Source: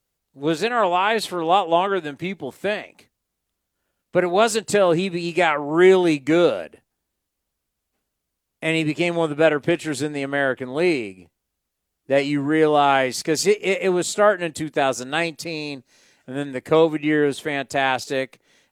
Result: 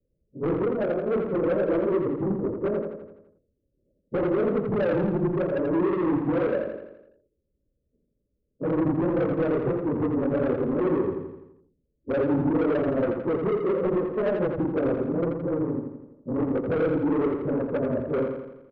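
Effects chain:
random phases in long frames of 50 ms
Butterworth low-pass 590 Hz 96 dB per octave
in parallel at 0 dB: downward compressor, threshold −27 dBFS, peak gain reduction 18 dB
on the sum: brickwall limiter −12.5 dBFS, peak gain reduction 11 dB
soft clipping −22.5 dBFS, distortion −10 dB
on a send: repeating echo 84 ms, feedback 54%, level −5.5 dB
on the sum: level +1 dB

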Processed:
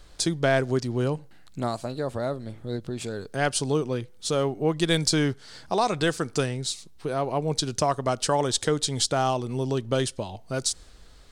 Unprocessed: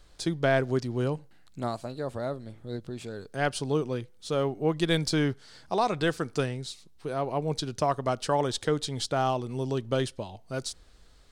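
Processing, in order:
in parallel at 0 dB: downward compressor, threshold −34 dBFS, peak gain reduction 13.5 dB
on the sum: dynamic equaliser 7,700 Hz, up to +8 dB, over −48 dBFS, Q 0.84

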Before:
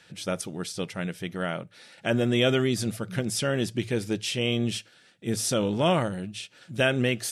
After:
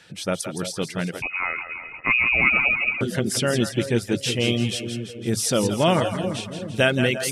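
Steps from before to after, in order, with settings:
echo with a time of its own for lows and highs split 520 Hz, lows 354 ms, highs 167 ms, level −7 dB
0:01.22–0:03.01: voice inversion scrambler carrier 2,700 Hz
reverb reduction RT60 0.52 s
level +4.5 dB

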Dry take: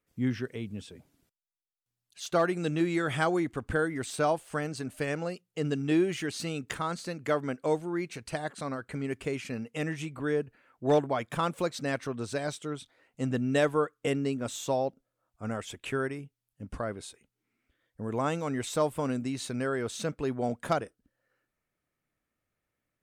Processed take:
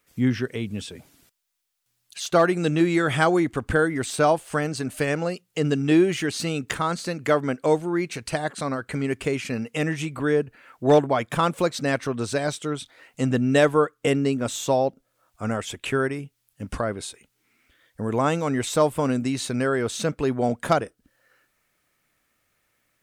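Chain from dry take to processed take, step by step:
one half of a high-frequency compander encoder only
level +7.5 dB

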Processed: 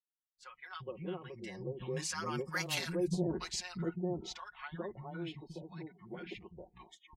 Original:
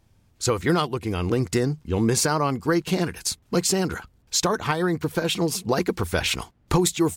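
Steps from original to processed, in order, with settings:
source passing by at 0:02.71, 20 m/s, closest 1.6 metres
low-pass that shuts in the quiet parts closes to 2,700 Hz, open at −30 dBFS
in parallel at −7 dB: soft clipping −20 dBFS, distortion −15 dB
on the sum: three-band delay without the direct sound highs, lows, mids 360/420 ms, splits 210/930 Hz
reversed playback
downward compressor 10 to 1, threshold −39 dBFS, peak gain reduction 18 dB
reversed playback
noise reduction from a noise print of the clip's start 29 dB
comb filter 5.5 ms, depth 90%
level +4 dB

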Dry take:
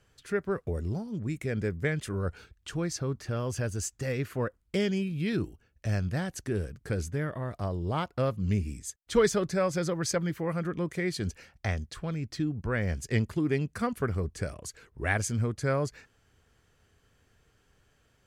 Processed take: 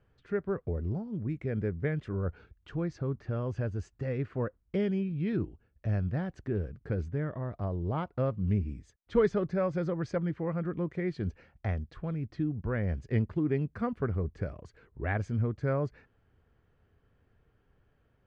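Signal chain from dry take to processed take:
head-to-tape spacing loss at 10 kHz 40 dB

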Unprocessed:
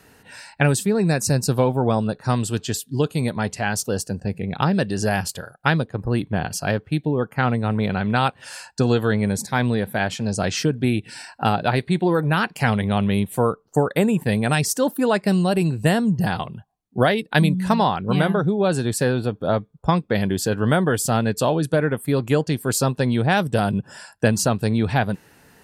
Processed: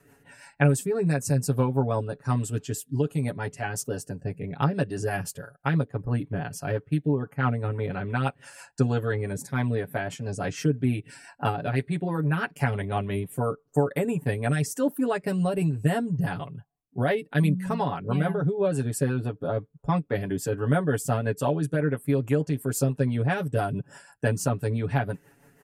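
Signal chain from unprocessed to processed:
parametric band 4,100 Hz −10.5 dB 0.9 octaves
comb filter 7.1 ms, depth 84%
rotating-speaker cabinet horn 6 Hz
level −6 dB

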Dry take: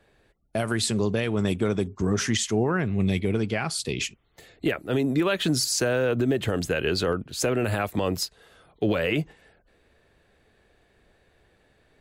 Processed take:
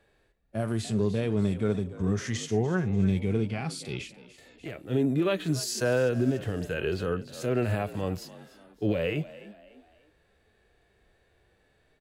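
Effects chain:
echo with shifted repeats 293 ms, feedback 40%, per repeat +51 Hz, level −18 dB
harmonic and percussive parts rebalanced percussive −18 dB

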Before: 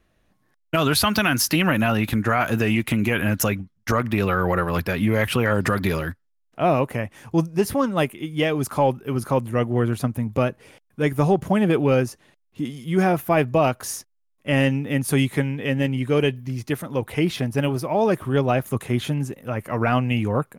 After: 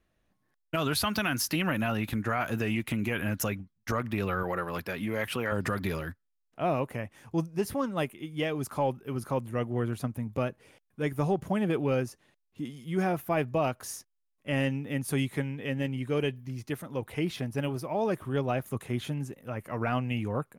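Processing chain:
0:04.43–0:05.52: high-pass filter 220 Hz 6 dB per octave
level −9 dB

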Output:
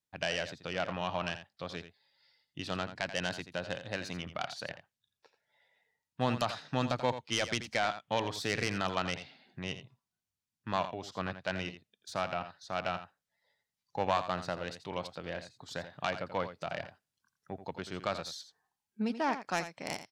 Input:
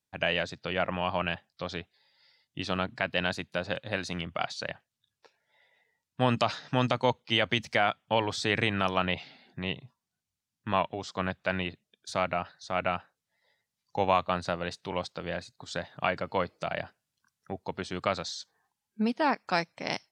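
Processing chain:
phase distortion by the signal itself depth 0.094 ms
on a send: single-tap delay 84 ms −11.5 dB
on the sum: level −5 dB

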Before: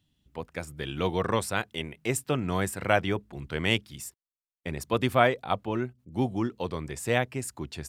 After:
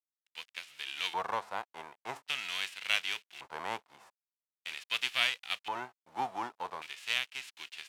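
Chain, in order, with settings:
spectral envelope flattened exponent 0.3
bit-depth reduction 8 bits, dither none
auto-filter band-pass square 0.44 Hz 880–2,800 Hz

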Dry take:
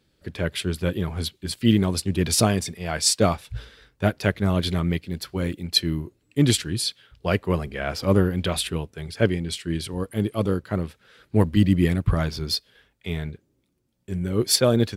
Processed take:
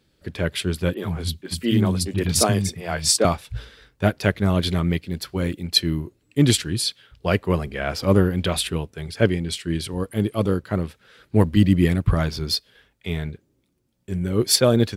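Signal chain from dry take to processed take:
0:00.94–0:03.25: three-band delay without the direct sound mids, highs, lows 30/80 ms, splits 240/3,000 Hz
level +2 dB

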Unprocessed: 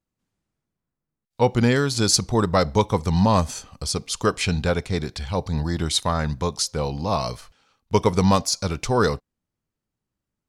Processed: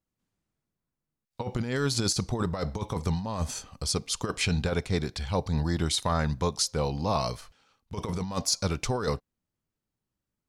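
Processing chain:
compressor whose output falls as the input rises −21 dBFS, ratio −0.5
level −5 dB

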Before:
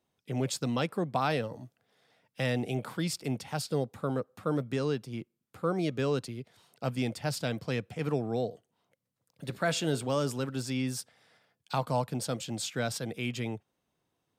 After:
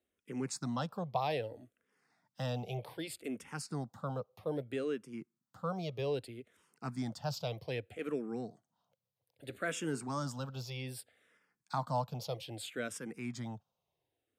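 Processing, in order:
parametric band 870 Hz +2.5 dB 1.6 octaves
frequency shifter mixed with the dry sound −0.63 Hz
level −4.5 dB

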